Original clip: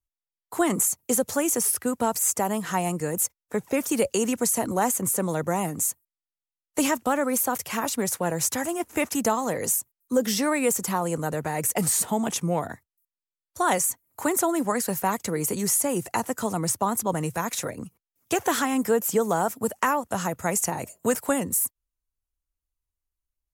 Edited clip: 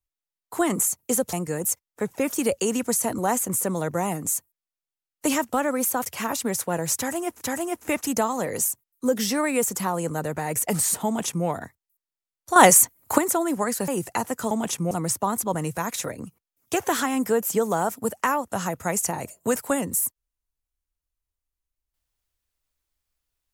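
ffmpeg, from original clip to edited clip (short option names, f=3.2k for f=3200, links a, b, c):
-filter_complex "[0:a]asplit=8[a][b][c][d][e][f][g][h];[a]atrim=end=1.332[i];[b]atrim=start=2.858:end=8.942[j];[c]atrim=start=8.488:end=13.642[k];[d]atrim=start=13.638:end=14.262,asetpts=PTS-STARTPTS,volume=10dB[l];[e]atrim=start=14.258:end=14.962[m];[f]atrim=start=15.868:end=16.502[n];[g]atrim=start=12.138:end=12.542[o];[h]atrim=start=16.498[p];[i][j]acrossfade=d=0.004:c1=hsin:c2=hsin[q];[q][k]acrossfade=d=0.004:c1=hsin:c2=hsin[r];[r][l]acrossfade=d=0.004:c1=hsin:c2=hsin[s];[s][m]acrossfade=d=0.004:c1=hsin:c2=hsin[t];[t][n]acrossfade=d=0.004:c1=hsin:c2=hsin[u];[u][o]acrossfade=d=0.004:c1=hsin:c2=hsin[v];[v][p]acrossfade=d=0.004:c1=hsin:c2=hsin"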